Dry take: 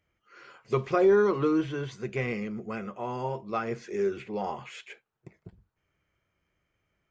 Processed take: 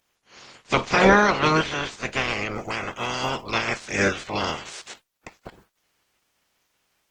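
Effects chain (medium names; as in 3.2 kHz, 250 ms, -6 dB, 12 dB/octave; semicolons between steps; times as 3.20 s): spectral peaks clipped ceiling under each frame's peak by 29 dB; trim +6.5 dB; Opus 16 kbps 48 kHz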